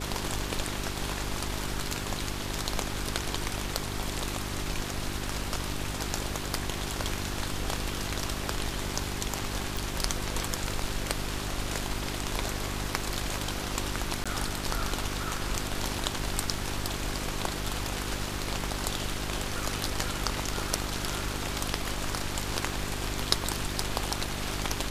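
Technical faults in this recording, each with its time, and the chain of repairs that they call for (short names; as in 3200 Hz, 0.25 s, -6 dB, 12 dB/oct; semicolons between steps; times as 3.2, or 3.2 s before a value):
hum 50 Hz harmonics 8 -37 dBFS
9.77 pop
14.24–14.26 gap 16 ms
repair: de-click; de-hum 50 Hz, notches 8; interpolate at 14.24, 16 ms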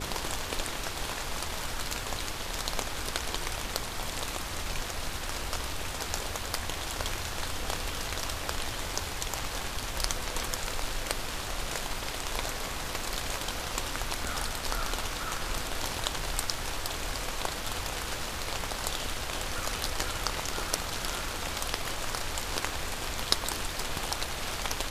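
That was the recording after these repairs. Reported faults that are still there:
none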